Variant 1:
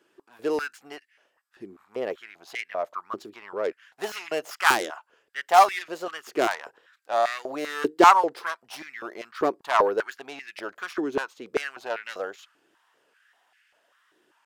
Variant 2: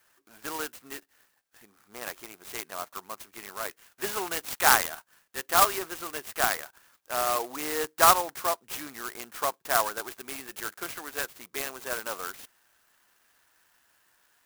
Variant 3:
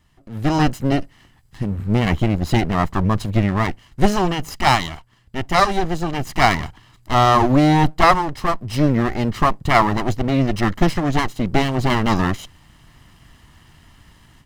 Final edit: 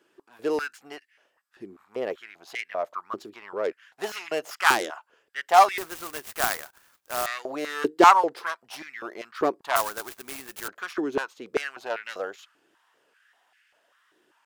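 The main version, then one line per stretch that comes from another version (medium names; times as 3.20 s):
1
5.78–7.26 s: from 2
9.76–10.68 s: from 2
not used: 3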